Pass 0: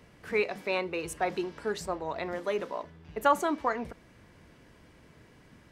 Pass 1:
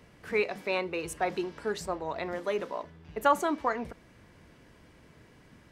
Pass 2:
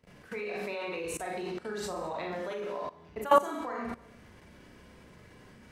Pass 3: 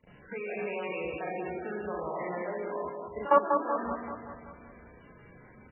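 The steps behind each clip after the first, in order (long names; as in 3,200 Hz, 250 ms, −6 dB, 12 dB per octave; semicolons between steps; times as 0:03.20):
no processing that can be heard
four-comb reverb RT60 0.6 s, combs from 30 ms, DRR −3 dB; output level in coarse steps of 18 dB
on a send: repeating echo 191 ms, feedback 55%, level −5 dB; on the sum: MP3 8 kbit/s 16,000 Hz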